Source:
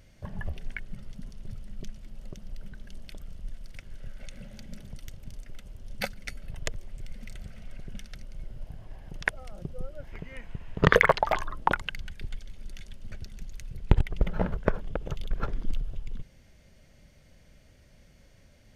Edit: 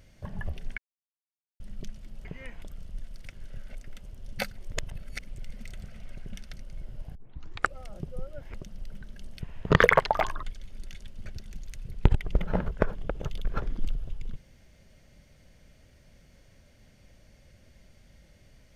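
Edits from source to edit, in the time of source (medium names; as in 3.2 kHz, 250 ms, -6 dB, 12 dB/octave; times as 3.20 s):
0.78–1.60 s: mute
2.25–3.12 s: swap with 10.16–10.53 s
4.25–5.37 s: delete
6.18–6.90 s: reverse
8.77 s: tape start 0.62 s
11.55–12.29 s: delete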